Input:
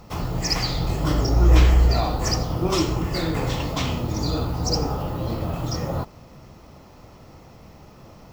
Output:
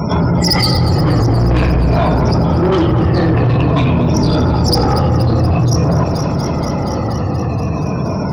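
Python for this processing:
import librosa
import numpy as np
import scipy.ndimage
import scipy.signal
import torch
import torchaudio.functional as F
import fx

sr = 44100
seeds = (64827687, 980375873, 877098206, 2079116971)

y = fx.spec_ripple(x, sr, per_octave=1.6, drift_hz=-0.49, depth_db=11)
y = scipy.signal.sosfilt(scipy.signal.butter(4, 82.0, 'highpass', fs=sr, output='sos'), y)
y = fx.low_shelf(y, sr, hz=280.0, db=7.5)
y = fx.spec_topn(y, sr, count=64)
y = fx.lowpass(y, sr, hz=3400.0, slope=24, at=(1.26, 4.01))
y = 10.0 ** (-20.0 / 20.0) * np.tanh(y / 10.0 ** (-20.0 / 20.0))
y = fx.echo_alternate(y, sr, ms=119, hz=810.0, feedback_pct=87, wet_db=-13)
y = fx.env_flatten(y, sr, amount_pct=70)
y = y * 10.0 ** (9.0 / 20.0)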